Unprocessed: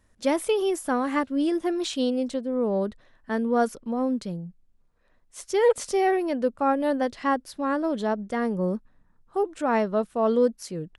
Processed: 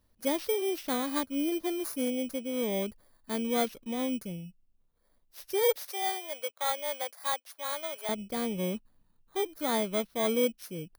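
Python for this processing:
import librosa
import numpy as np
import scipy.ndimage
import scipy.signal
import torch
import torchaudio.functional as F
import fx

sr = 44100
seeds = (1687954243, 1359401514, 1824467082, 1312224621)

y = fx.bit_reversed(x, sr, seeds[0], block=16)
y = fx.highpass(y, sr, hz=580.0, slope=24, at=(5.76, 8.09))
y = y * librosa.db_to_amplitude(-6.0)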